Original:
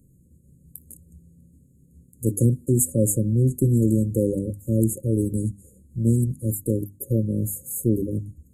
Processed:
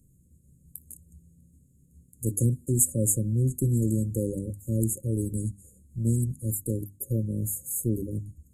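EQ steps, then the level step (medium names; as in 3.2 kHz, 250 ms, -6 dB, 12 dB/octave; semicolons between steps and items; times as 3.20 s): bass shelf 150 Hz +7.5 dB; peaking EQ 6 kHz +8 dB 2 oct; treble shelf 8.2 kHz +6 dB; -9.0 dB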